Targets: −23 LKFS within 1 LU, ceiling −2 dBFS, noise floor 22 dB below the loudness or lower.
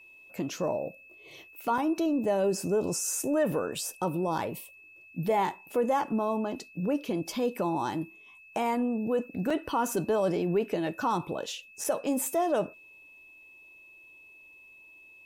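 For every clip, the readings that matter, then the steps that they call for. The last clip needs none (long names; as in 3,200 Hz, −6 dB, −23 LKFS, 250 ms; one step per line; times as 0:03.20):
number of dropouts 4; longest dropout 4.3 ms; interfering tone 2,600 Hz; level of the tone −51 dBFS; integrated loudness −30.0 LKFS; sample peak −17.0 dBFS; target loudness −23.0 LKFS
→ repair the gap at 0:01.78/0:03.52/0:09.50/0:11.84, 4.3 ms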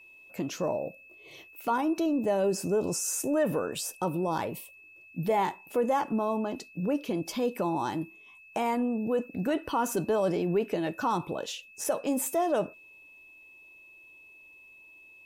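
number of dropouts 0; interfering tone 2,600 Hz; level of the tone −51 dBFS
→ notch filter 2,600 Hz, Q 30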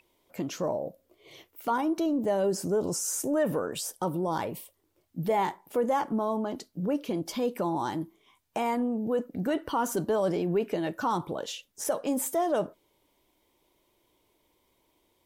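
interfering tone none found; integrated loudness −30.0 LKFS; sample peak −17.0 dBFS; target loudness −23.0 LKFS
→ level +7 dB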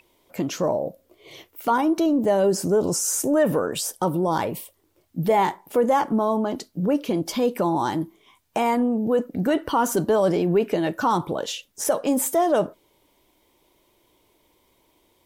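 integrated loudness −23.0 LKFS; sample peak −10.0 dBFS; background noise floor −65 dBFS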